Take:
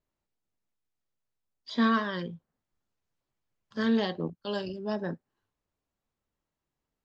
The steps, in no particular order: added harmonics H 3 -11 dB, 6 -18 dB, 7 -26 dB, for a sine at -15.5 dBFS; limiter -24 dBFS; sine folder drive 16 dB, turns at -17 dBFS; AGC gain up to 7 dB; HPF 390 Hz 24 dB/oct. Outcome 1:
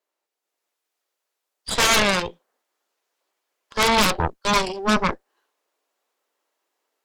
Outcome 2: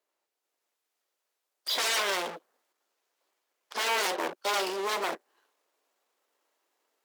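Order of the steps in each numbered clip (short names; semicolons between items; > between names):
HPF > added harmonics > limiter > sine folder > AGC; sine folder > AGC > added harmonics > limiter > HPF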